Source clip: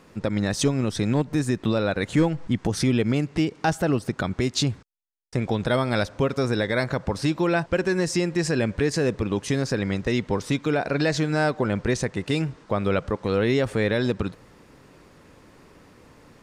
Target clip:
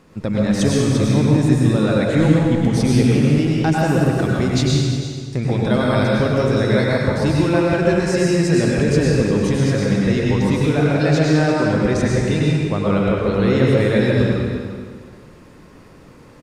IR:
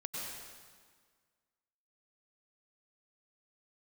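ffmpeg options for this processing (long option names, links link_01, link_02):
-filter_complex "[0:a]lowshelf=frequency=310:gain=5.5,aecho=1:1:348:0.237[link_01];[1:a]atrim=start_sample=2205[link_02];[link_01][link_02]afir=irnorm=-1:irlink=0,volume=3dB"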